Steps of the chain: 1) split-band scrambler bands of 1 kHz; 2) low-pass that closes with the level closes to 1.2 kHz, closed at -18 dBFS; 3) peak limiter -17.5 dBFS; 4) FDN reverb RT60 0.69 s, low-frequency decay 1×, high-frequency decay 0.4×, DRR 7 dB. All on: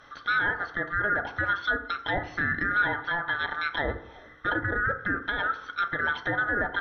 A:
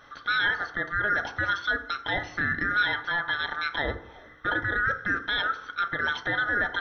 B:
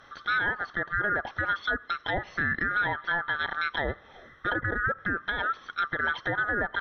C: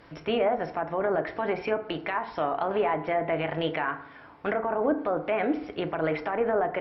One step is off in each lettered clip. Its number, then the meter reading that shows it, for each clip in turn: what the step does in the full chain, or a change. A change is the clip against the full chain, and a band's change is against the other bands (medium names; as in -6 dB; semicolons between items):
2, 4 kHz band +7.5 dB; 4, crest factor change -2.0 dB; 1, 500 Hz band +12.0 dB